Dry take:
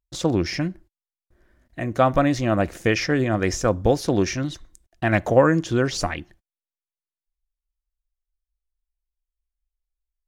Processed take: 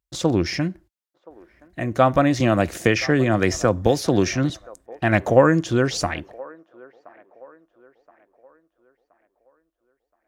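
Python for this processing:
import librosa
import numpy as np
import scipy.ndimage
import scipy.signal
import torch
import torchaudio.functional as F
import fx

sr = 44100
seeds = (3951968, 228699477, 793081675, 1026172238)

y = scipy.signal.sosfilt(scipy.signal.butter(2, 55.0, 'highpass', fs=sr, output='sos'), x)
y = fx.echo_wet_bandpass(y, sr, ms=1023, feedback_pct=39, hz=780.0, wet_db=-21)
y = fx.band_squash(y, sr, depth_pct=70, at=(2.4, 4.5))
y = y * librosa.db_to_amplitude(1.5)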